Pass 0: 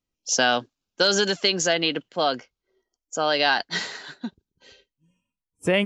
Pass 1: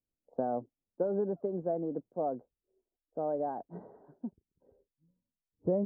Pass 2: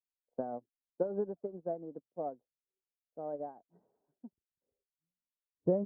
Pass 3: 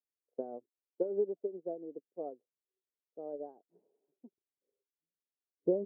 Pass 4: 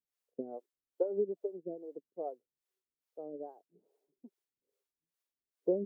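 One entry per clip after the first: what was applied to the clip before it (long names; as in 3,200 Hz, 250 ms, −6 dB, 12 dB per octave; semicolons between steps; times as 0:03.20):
inverse Chebyshev low-pass filter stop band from 2,400 Hz, stop band 60 dB; level −7 dB
expander for the loud parts 2.5 to 1, over −43 dBFS; level +2 dB
resonant band-pass 400 Hz, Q 2.7; level +4 dB
two-band tremolo in antiphase 2.4 Hz, depth 100%, crossover 410 Hz; level +5.5 dB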